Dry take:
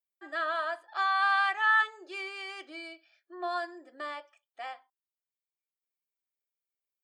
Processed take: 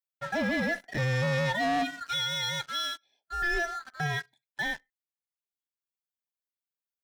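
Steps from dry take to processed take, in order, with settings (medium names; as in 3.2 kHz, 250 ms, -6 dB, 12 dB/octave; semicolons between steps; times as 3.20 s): split-band scrambler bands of 1 kHz; waveshaping leveller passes 3; peak limiter -23.5 dBFS, peak gain reduction 7.5 dB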